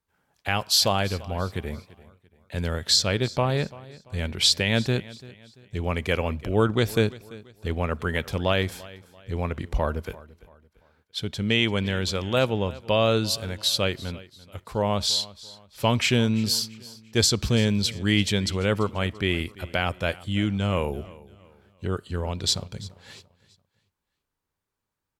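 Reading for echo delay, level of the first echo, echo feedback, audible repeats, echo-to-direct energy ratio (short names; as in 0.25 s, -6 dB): 0.34 s, -20.0 dB, 37%, 2, -19.5 dB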